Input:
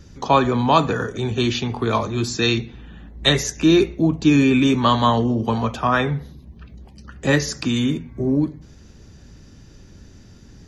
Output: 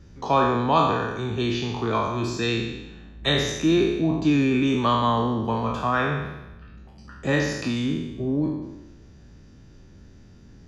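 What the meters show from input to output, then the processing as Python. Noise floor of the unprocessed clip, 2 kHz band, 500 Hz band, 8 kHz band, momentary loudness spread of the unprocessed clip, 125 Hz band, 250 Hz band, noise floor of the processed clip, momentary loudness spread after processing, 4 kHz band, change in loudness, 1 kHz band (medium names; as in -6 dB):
-46 dBFS, -3.5 dB, -3.5 dB, -8.0 dB, 8 LU, -4.5 dB, -4.5 dB, -49 dBFS, 10 LU, -5.5 dB, -4.0 dB, -2.5 dB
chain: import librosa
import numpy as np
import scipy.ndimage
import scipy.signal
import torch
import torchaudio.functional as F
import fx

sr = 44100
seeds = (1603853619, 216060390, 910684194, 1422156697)

y = fx.spec_trails(x, sr, decay_s=1.03)
y = fx.high_shelf(y, sr, hz=4800.0, db=-10.5)
y = F.gain(torch.from_numpy(y), -6.0).numpy()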